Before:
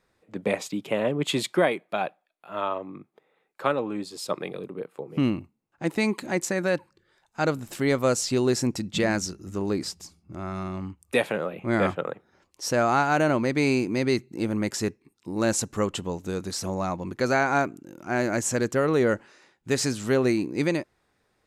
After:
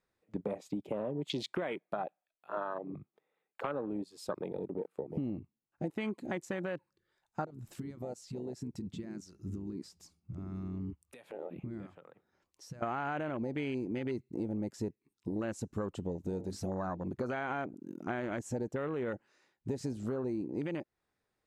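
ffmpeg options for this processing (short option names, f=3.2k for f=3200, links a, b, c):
-filter_complex "[0:a]asplit=3[a][b][c];[a]afade=t=out:st=7.44:d=0.02[d];[b]acompressor=threshold=-36dB:ratio=20:attack=3.2:release=140:knee=1:detection=peak,afade=t=in:st=7.44:d=0.02,afade=t=out:st=12.82:d=0.02[e];[c]afade=t=in:st=12.82:d=0.02[f];[d][e][f]amix=inputs=3:normalize=0,asettb=1/sr,asplit=3[g][h][i];[g]atrim=end=16.294[j];[h]atrim=start=16.29:end=17.14,asetpts=PTS-STARTPTS,afade=t=in:d=0.004:c=qsin,afade=t=out:st=0.846:d=0.004:c=qsin,bandreject=f=50:t=h:w=6,bandreject=f=100:t=h:w=6,bandreject=f=150:t=h:w=6,bandreject=f=200:t=h:w=6,bandreject=f=250:t=h:w=6,bandreject=f=300:t=h:w=6,bandreject=f=350:t=h:w=6,bandreject=f=400:t=h:w=6,bandreject=f=450:t=h:w=6[k];[i]atrim=start=17.136[l];[j][k]acrossfade=d=0.004:c1=hsin:c2=qsin[m];[m][l]acrossfade=d=0.004:c1=qsin:c2=hsin,afwtdn=0.0316,alimiter=limit=-17.5dB:level=0:latency=1,acompressor=threshold=-37dB:ratio=5,volume=3dB"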